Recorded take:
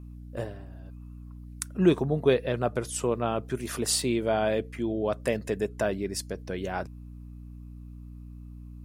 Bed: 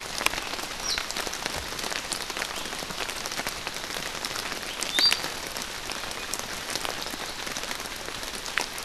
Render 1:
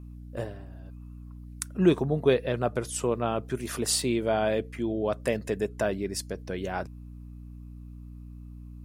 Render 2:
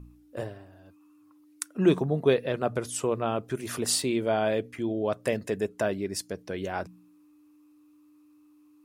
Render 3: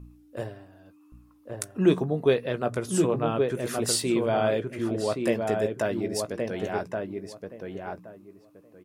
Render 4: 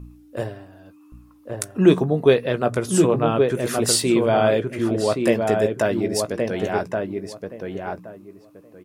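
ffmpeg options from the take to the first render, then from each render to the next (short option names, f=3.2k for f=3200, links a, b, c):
-af anull
-af "bandreject=f=60:t=h:w=4,bandreject=f=120:t=h:w=4,bandreject=f=180:t=h:w=4,bandreject=f=240:t=h:w=4"
-filter_complex "[0:a]asplit=2[a][b];[b]adelay=17,volume=-12dB[c];[a][c]amix=inputs=2:normalize=0,asplit=2[d][e];[e]adelay=1122,lowpass=f=1.7k:p=1,volume=-3.5dB,asplit=2[f][g];[g]adelay=1122,lowpass=f=1.7k:p=1,volume=0.2,asplit=2[h][i];[i]adelay=1122,lowpass=f=1.7k:p=1,volume=0.2[j];[d][f][h][j]amix=inputs=4:normalize=0"
-af "volume=6.5dB,alimiter=limit=-3dB:level=0:latency=1"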